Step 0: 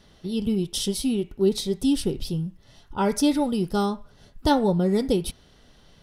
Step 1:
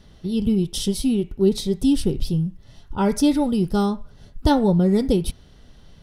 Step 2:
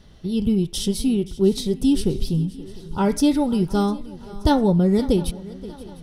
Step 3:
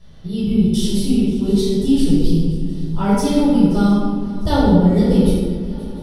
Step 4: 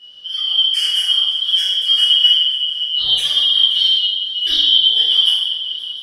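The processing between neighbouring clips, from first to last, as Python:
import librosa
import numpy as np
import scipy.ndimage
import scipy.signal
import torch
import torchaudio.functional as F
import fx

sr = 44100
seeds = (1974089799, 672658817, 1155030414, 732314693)

y1 = fx.low_shelf(x, sr, hz=210.0, db=9.5)
y2 = fx.echo_swing(y1, sr, ms=702, ratio=3, feedback_pct=42, wet_db=-18.5)
y3 = fx.room_shoebox(y2, sr, seeds[0], volume_m3=1000.0, walls='mixed', distance_m=5.9)
y3 = F.gain(torch.from_numpy(y3), -7.5).numpy()
y4 = fx.band_shuffle(y3, sr, order='2413')
y4 = F.gain(torch.from_numpy(y4), -1.0).numpy()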